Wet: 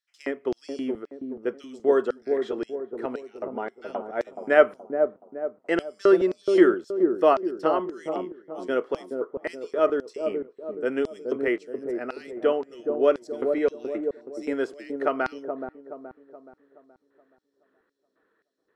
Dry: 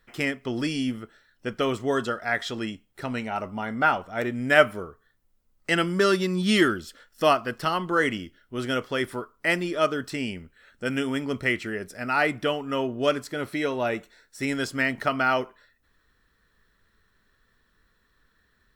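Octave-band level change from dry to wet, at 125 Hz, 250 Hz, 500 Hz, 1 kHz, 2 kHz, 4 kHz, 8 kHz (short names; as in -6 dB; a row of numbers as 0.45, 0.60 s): under -10 dB, -0.5 dB, +4.0 dB, -3.5 dB, -8.0 dB, -13.0 dB, under -10 dB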